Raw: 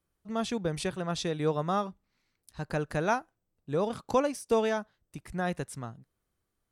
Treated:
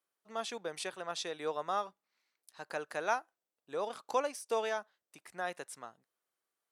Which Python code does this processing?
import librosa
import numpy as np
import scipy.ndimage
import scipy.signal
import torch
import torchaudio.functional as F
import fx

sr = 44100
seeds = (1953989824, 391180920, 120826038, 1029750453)

y = scipy.signal.sosfilt(scipy.signal.butter(2, 550.0, 'highpass', fs=sr, output='sos'), x)
y = y * 10.0 ** (-3.0 / 20.0)